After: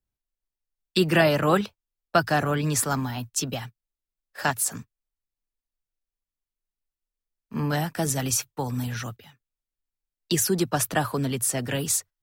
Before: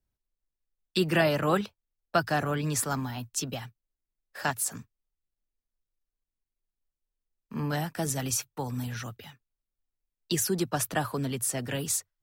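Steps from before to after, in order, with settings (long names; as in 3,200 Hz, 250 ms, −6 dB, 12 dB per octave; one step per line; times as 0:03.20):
noise gate −43 dBFS, range −8 dB
level +4.5 dB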